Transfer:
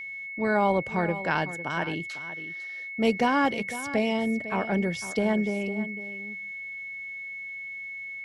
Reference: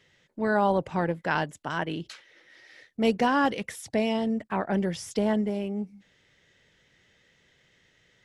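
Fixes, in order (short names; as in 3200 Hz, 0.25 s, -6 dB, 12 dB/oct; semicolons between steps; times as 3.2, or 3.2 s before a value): notch 2200 Hz, Q 30; inverse comb 0.503 s -13.5 dB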